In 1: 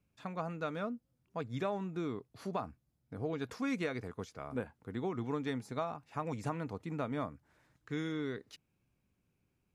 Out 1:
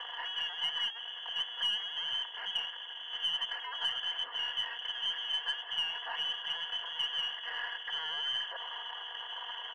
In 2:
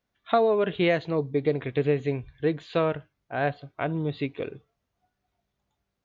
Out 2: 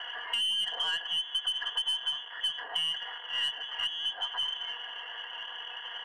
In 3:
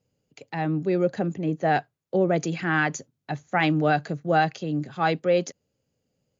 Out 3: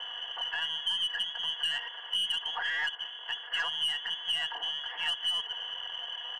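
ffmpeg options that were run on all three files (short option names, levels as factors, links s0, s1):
-filter_complex "[0:a]aeval=exprs='val(0)+0.5*0.0531*sgn(val(0))':c=same,asplit=3[s0][s1][s2];[s0]bandpass=f=530:t=q:w=8,volume=1[s3];[s1]bandpass=f=1840:t=q:w=8,volume=0.501[s4];[s2]bandpass=f=2480:t=q:w=8,volume=0.355[s5];[s3][s4][s5]amix=inputs=3:normalize=0,lowpass=f=3000:t=q:w=0.5098,lowpass=f=3000:t=q:w=0.6013,lowpass=f=3000:t=q:w=0.9,lowpass=f=3000:t=q:w=2.563,afreqshift=-3500,aecho=1:1:4.2:0.78,asoftclip=type=tanh:threshold=0.0631,acompressor=threshold=0.0224:ratio=12,highpass=f=390:w=0.5412,highpass=f=390:w=1.3066,acontrast=33,aeval=exprs='0.0841*(cos(1*acos(clip(val(0)/0.0841,-1,1)))-cos(1*PI/2))+0.00188*(cos(4*acos(clip(val(0)/0.0841,-1,1)))-cos(4*PI/2))':c=same"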